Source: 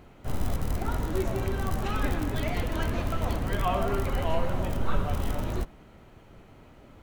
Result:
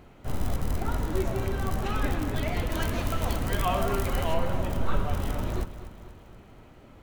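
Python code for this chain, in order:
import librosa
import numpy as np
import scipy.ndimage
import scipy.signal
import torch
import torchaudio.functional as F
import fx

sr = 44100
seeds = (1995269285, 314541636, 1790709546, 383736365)

p1 = fx.high_shelf(x, sr, hz=3700.0, db=7.5, at=(2.7, 4.34))
y = p1 + fx.echo_feedback(p1, sr, ms=239, feedback_pct=56, wet_db=-14.0, dry=0)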